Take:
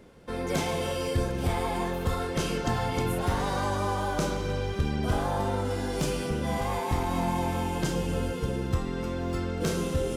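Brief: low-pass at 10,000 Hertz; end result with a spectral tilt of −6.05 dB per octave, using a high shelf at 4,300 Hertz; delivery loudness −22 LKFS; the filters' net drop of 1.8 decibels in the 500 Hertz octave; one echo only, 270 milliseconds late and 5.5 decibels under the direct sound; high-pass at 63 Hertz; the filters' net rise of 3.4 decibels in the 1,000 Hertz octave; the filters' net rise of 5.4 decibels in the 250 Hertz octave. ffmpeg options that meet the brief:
ffmpeg -i in.wav -af "highpass=63,lowpass=10000,equalizer=frequency=250:width_type=o:gain=8.5,equalizer=frequency=500:width_type=o:gain=-6.5,equalizer=frequency=1000:width_type=o:gain=6,highshelf=frequency=4300:gain=-4,aecho=1:1:270:0.531,volume=4dB" out.wav

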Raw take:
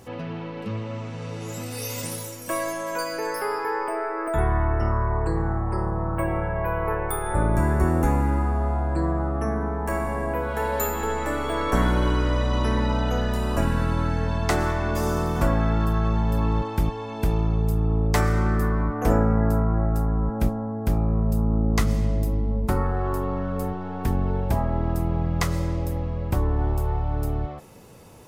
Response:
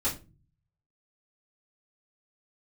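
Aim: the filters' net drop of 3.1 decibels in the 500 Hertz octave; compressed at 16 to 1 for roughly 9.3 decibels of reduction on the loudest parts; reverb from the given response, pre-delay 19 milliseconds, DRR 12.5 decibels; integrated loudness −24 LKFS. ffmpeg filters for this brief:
-filter_complex "[0:a]equalizer=frequency=500:width_type=o:gain=-4,acompressor=threshold=-25dB:ratio=16,asplit=2[link_01][link_02];[1:a]atrim=start_sample=2205,adelay=19[link_03];[link_02][link_03]afir=irnorm=-1:irlink=0,volume=-19.5dB[link_04];[link_01][link_04]amix=inputs=2:normalize=0,volume=6.5dB"

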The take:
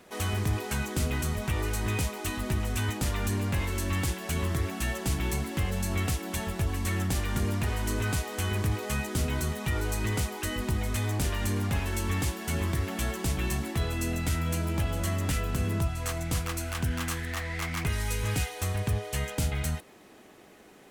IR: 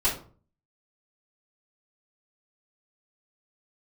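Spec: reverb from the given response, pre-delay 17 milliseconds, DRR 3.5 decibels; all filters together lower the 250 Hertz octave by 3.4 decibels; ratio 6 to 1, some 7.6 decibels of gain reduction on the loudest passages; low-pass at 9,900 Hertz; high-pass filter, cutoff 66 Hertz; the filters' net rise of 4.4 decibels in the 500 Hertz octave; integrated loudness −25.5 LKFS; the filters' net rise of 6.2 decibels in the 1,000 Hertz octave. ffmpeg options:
-filter_complex "[0:a]highpass=66,lowpass=9900,equalizer=frequency=250:width_type=o:gain=-7,equalizer=frequency=500:width_type=o:gain=6,equalizer=frequency=1000:width_type=o:gain=6.5,acompressor=threshold=-33dB:ratio=6,asplit=2[link_01][link_02];[1:a]atrim=start_sample=2205,adelay=17[link_03];[link_02][link_03]afir=irnorm=-1:irlink=0,volume=-14.5dB[link_04];[link_01][link_04]amix=inputs=2:normalize=0,volume=9dB"

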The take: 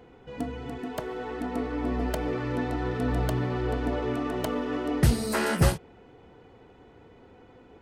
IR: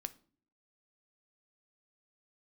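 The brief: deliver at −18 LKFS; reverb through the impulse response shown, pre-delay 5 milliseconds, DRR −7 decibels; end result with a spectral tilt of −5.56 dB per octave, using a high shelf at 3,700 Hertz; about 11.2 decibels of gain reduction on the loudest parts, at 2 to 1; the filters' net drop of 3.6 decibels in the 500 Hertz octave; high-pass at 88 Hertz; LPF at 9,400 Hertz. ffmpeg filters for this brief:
-filter_complex "[0:a]highpass=88,lowpass=9400,equalizer=frequency=500:width_type=o:gain=-4.5,highshelf=frequency=3700:gain=-5.5,acompressor=threshold=-40dB:ratio=2,asplit=2[link_01][link_02];[1:a]atrim=start_sample=2205,adelay=5[link_03];[link_02][link_03]afir=irnorm=-1:irlink=0,volume=9.5dB[link_04];[link_01][link_04]amix=inputs=2:normalize=0,volume=14dB"

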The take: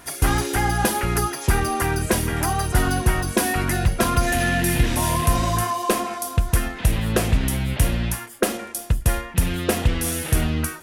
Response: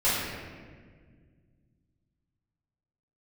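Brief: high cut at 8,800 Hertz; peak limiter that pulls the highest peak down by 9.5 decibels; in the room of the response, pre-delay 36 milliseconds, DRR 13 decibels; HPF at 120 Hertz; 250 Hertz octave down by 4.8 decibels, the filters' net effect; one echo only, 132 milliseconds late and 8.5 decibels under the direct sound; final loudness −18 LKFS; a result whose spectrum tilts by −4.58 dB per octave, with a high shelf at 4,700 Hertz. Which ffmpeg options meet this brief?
-filter_complex "[0:a]highpass=120,lowpass=8800,equalizer=frequency=250:width_type=o:gain=-6.5,highshelf=frequency=4700:gain=-7,alimiter=limit=-17.5dB:level=0:latency=1,aecho=1:1:132:0.376,asplit=2[link_01][link_02];[1:a]atrim=start_sample=2205,adelay=36[link_03];[link_02][link_03]afir=irnorm=-1:irlink=0,volume=-27dB[link_04];[link_01][link_04]amix=inputs=2:normalize=0,volume=9.5dB"

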